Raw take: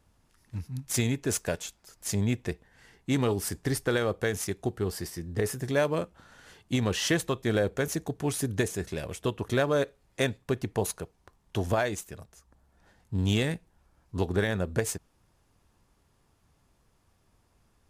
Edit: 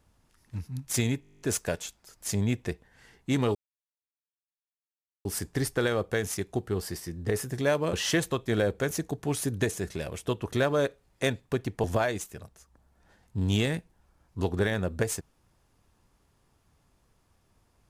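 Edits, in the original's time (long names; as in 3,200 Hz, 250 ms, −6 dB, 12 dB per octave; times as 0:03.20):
0:01.21: stutter 0.02 s, 11 plays
0:03.35: splice in silence 1.70 s
0:06.03–0:06.90: remove
0:10.81–0:11.61: remove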